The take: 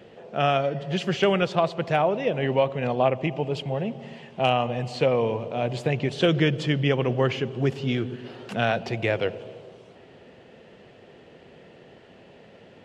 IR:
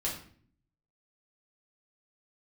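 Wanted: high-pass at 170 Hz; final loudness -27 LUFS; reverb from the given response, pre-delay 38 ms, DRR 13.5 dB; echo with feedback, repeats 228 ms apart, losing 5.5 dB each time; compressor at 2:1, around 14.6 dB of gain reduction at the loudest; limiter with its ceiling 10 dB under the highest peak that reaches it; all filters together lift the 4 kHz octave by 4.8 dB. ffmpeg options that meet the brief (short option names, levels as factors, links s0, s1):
-filter_complex "[0:a]highpass=170,equalizer=f=4000:t=o:g=7,acompressor=threshold=0.00631:ratio=2,alimiter=level_in=1.88:limit=0.0631:level=0:latency=1,volume=0.531,aecho=1:1:228|456|684|912|1140|1368|1596:0.531|0.281|0.149|0.079|0.0419|0.0222|0.0118,asplit=2[s0][s1];[1:a]atrim=start_sample=2205,adelay=38[s2];[s1][s2]afir=irnorm=-1:irlink=0,volume=0.133[s3];[s0][s3]amix=inputs=2:normalize=0,volume=4.47"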